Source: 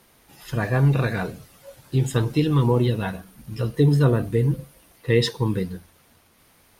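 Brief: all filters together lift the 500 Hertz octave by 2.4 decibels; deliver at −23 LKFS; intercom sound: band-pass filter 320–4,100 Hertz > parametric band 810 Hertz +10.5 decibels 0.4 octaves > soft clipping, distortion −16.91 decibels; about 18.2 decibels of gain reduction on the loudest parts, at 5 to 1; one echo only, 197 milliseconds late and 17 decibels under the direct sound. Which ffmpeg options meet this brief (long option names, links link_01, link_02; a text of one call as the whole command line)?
ffmpeg -i in.wav -af "equalizer=frequency=500:width_type=o:gain=3,acompressor=threshold=-34dB:ratio=5,highpass=320,lowpass=4100,equalizer=frequency=810:width_type=o:width=0.4:gain=10.5,aecho=1:1:197:0.141,asoftclip=threshold=-31dB,volume=19.5dB" out.wav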